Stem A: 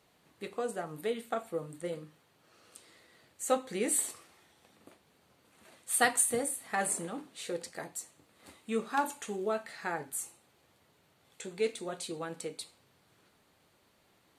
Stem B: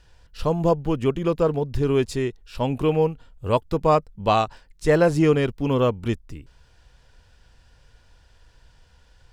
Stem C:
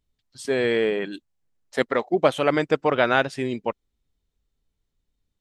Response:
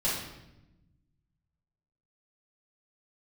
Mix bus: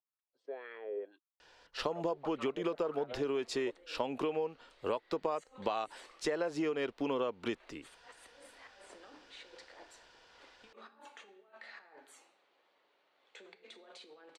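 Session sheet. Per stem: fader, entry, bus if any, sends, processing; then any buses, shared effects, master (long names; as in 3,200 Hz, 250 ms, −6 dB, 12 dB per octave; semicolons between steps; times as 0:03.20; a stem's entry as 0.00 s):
−11.5 dB, 1.95 s, no bus, send −18 dB, three-way crossover with the lows and the highs turned down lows −13 dB, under 290 Hz, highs −15 dB, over 4,700 Hz; hum removal 56.05 Hz, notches 4; compressor whose output falls as the input rises −47 dBFS, ratio −1
+1.5 dB, 1.40 s, bus A, no send, no processing
−5.0 dB, 0.00 s, bus A, no send, downward compressor, threshold −20 dBFS, peak gain reduction 8.5 dB; LFO wah 1.8 Hz 440–1,300 Hz, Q 5.2
bus A: 0.0 dB, low-shelf EQ 160 Hz −7 dB; downward compressor 6 to 1, threshold −25 dBFS, peak gain reduction 12.5 dB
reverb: on, RT60 0.90 s, pre-delay 3 ms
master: three-way crossover with the lows and the highs turned down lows −21 dB, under 260 Hz, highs −15 dB, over 6,500 Hz; downward compressor, threshold −30 dBFS, peak gain reduction 7.5 dB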